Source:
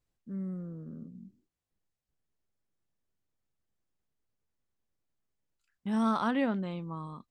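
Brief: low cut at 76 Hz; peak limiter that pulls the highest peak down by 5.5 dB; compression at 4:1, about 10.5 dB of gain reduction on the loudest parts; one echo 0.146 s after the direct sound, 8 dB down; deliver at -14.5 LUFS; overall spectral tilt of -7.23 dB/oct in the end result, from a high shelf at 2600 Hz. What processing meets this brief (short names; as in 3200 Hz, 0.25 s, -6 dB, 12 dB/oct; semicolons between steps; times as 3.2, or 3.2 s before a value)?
HPF 76 Hz; high shelf 2600 Hz -8.5 dB; compressor 4:1, threshold -38 dBFS; limiter -35 dBFS; echo 0.146 s -8 dB; gain +29 dB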